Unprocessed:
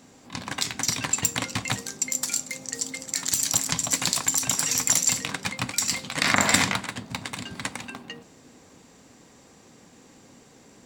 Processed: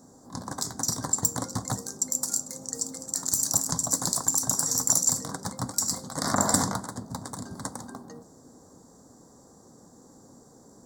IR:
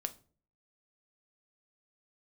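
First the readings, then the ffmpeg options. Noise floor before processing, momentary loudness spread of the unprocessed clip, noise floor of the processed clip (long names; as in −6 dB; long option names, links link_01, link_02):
−54 dBFS, 14 LU, −54 dBFS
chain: -af "asuperstop=centerf=2600:order=4:qfactor=0.6"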